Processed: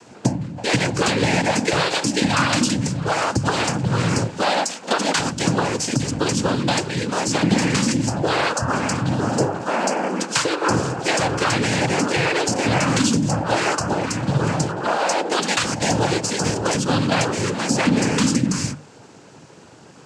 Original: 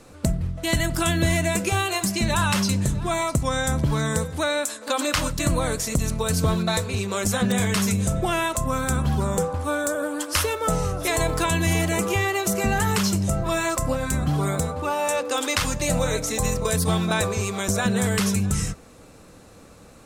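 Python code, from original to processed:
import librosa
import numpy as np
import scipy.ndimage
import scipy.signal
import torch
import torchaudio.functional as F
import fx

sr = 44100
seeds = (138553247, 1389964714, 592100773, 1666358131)

y = fx.noise_vocoder(x, sr, seeds[0], bands=8)
y = fx.hum_notches(y, sr, base_hz=50, count=3)
y = F.gain(torch.from_numpy(y), 4.5).numpy()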